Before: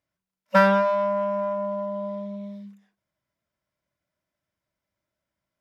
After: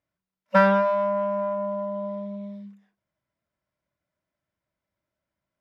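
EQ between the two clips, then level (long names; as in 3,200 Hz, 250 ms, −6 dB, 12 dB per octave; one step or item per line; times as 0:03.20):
high-shelf EQ 4,500 Hz −10.5 dB
0.0 dB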